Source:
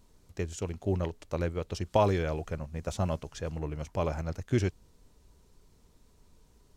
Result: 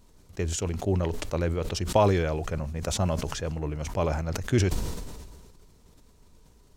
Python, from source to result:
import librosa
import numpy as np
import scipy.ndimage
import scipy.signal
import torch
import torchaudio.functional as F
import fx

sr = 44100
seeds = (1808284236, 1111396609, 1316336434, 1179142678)

y = fx.sustainer(x, sr, db_per_s=34.0)
y = F.gain(torch.from_numpy(y), 3.0).numpy()